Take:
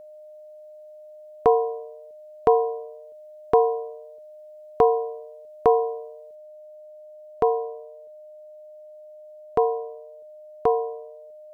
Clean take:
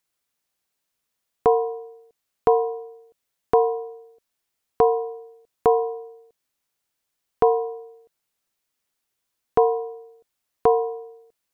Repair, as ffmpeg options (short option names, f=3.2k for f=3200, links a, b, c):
-af "bandreject=f=610:w=30,asetnsamples=n=441:p=0,asendcmd='6.35 volume volume 3dB',volume=0dB"